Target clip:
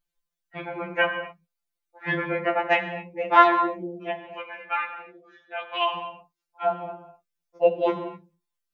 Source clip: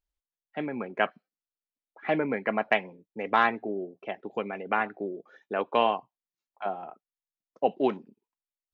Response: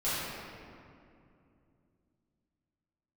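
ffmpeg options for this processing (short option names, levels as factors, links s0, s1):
-filter_complex "[0:a]asplit=3[s0][s1][s2];[s0]afade=t=out:st=4.17:d=0.02[s3];[s1]bandpass=f=3200:t=q:w=0.78:csg=0,afade=t=in:st=4.17:d=0.02,afade=t=out:st=5.95:d=0.02[s4];[s2]afade=t=in:st=5.95:d=0.02[s5];[s3][s4][s5]amix=inputs=3:normalize=0,asplit=2[s6][s7];[1:a]atrim=start_sample=2205,afade=t=out:st=0.31:d=0.01,atrim=end_sample=14112[s8];[s7][s8]afir=irnorm=-1:irlink=0,volume=0.2[s9];[s6][s9]amix=inputs=2:normalize=0,afftfilt=real='re*2.83*eq(mod(b,8),0)':imag='im*2.83*eq(mod(b,8),0)':win_size=2048:overlap=0.75,volume=2"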